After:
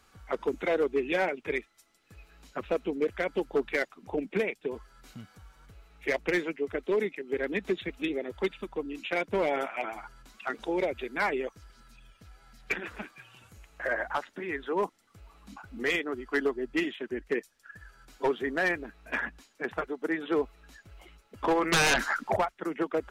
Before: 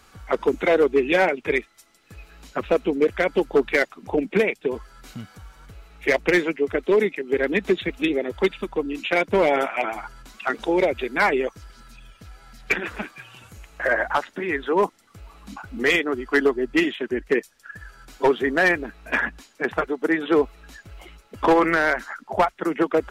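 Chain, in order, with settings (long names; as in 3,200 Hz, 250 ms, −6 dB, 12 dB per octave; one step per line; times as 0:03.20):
0:21.72–0:22.37: sine wavefolder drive 11 dB, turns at −10.5 dBFS
level −9 dB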